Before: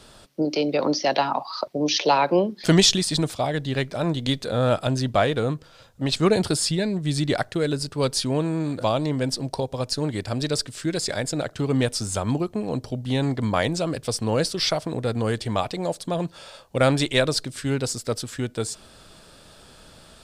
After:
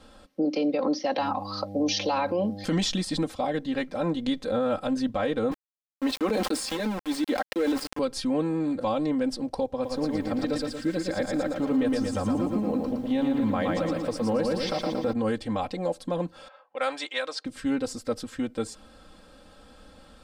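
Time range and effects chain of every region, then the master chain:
0:01.18–0:02.64: high-shelf EQ 4,300 Hz +11 dB + hum with harmonics 100 Hz, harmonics 8, −36 dBFS −5 dB per octave
0:05.51–0:07.99: Butterworth high-pass 220 Hz 48 dB per octave + centre clipping without the shift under −29.5 dBFS + level that may fall only so fast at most 27 dB per second
0:09.72–0:15.13: high-shelf EQ 4,400 Hz −6 dB + feedback echo at a low word length 115 ms, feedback 55%, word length 8 bits, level −3.5 dB
0:16.48–0:17.45: low-pass that shuts in the quiet parts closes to 1,600 Hz, open at −14.5 dBFS + high-pass filter 830 Hz
whole clip: high-shelf EQ 2,800 Hz −11 dB; comb filter 3.8 ms, depth 91%; brickwall limiter −14 dBFS; level −3.5 dB

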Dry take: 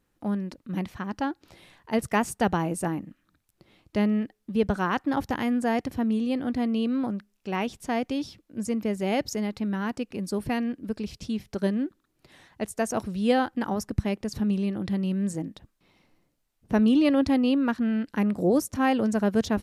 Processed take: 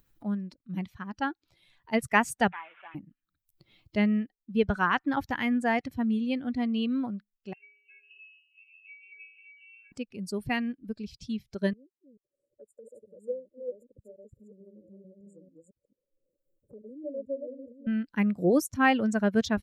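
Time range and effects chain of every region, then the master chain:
0:02.52–0:02.95: linear delta modulator 16 kbit/s, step −32.5 dBFS + high-pass filter 1,100 Hz + high-frequency loss of the air 150 metres
0:07.53–0:09.92: resonances in every octave D#, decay 0.78 s + voice inversion scrambler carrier 2,900 Hz
0:11.73–0:17.87: delay that plays each chunk backwards 221 ms, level −1.5 dB + linear-phase brick-wall band-stop 600–6,900 Hz + three-way crossover with the lows and the highs turned down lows −23 dB, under 540 Hz, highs −22 dB, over 3,700 Hz
whole clip: spectral dynamics exaggerated over time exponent 1.5; dynamic equaliser 1,900 Hz, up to +8 dB, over −47 dBFS, Q 0.91; upward compression, threshold −46 dBFS

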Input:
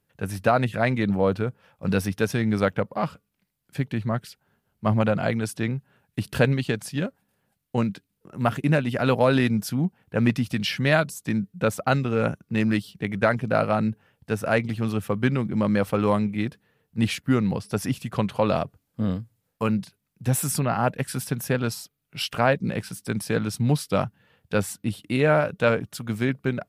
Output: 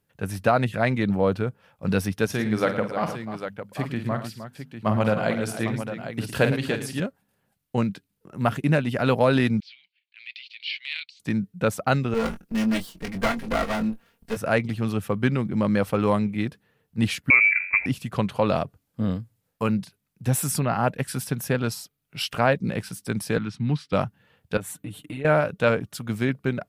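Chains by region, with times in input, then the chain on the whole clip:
0:02.26–0:07.00: low-shelf EQ 110 Hz −7.5 dB + mains-hum notches 50/100/150/200/250 Hz + multi-tap delay 47/110/308/802 ms −9/−12/−11/−9.5 dB
0:09.60–0:11.20: noise gate −59 dBFS, range −10 dB + elliptic band-pass filter 2,200–4,400 Hz, stop band 70 dB + transient designer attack −6 dB, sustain +5 dB
0:12.14–0:14.37: lower of the sound and its delayed copy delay 4.3 ms + high-shelf EQ 8,600 Hz +8 dB + double-tracking delay 22 ms −7.5 dB
0:17.30–0:17.86: low-shelf EQ 240 Hz +8.5 dB + hum removal 45.99 Hz, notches 25 + voice inversion scrambler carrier 2,500 Hz
0:23.38–0:23.93: band-pass filter 120–3,200 Hz + parametric band 570 Hz −15 dB 0.89 octaves
0:24.57–0:25.25: parametric band 5,000 Hz −13 dB 0.5 octaves + comb filter 6.7 ms, depth 98% + downward compressor, threshold −31 dBFS
whole clip: no processing

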